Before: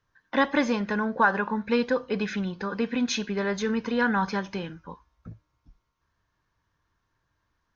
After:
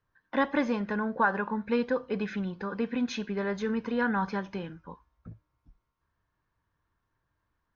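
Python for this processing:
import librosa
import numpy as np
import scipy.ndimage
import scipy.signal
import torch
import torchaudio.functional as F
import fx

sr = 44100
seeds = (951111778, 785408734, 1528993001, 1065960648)

y = fx.lowpass(x, sr, hz=2200.0, slope=6)
y = y * librosa.db_to_amplitude(-3.0)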